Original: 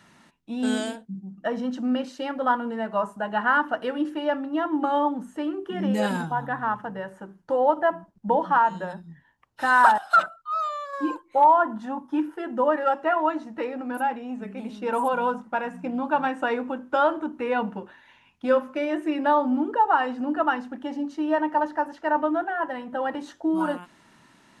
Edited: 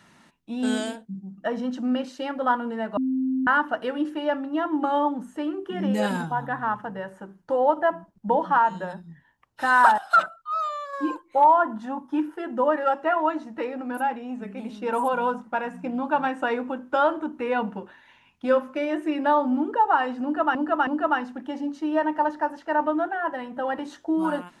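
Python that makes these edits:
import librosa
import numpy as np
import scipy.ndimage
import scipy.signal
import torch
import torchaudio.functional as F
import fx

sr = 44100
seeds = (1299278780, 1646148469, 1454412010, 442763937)

y = fx.edit(x, sr, fx.bleep(start_s=2.97, length_s=0.5, hz=261.0, db=-21.5),
    fx.repeat(start_s=20.23, length_s=0.32, count=3), tone=tone)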